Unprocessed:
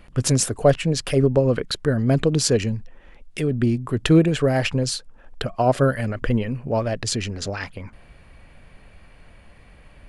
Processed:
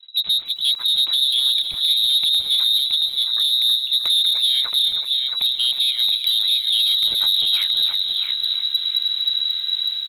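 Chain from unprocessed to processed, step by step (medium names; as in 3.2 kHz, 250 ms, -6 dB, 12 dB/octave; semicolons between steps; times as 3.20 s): tilt shelf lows +9 dB, about 690 Hz; level rider gain up to 15.5 dB; on a send: feedback delay 673 ms, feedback 22%, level -6 dB; on the sum: expander -33 dBFS; frequency inversion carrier 3.9 kHz; peak limiter -5.5 dBFS, peak gain reduction 8.5 dB; overload inside the chain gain 11 dB; bit-crushed delay 314 ms, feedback 55%, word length 7-bit, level -10.5 dB; trim -3 dB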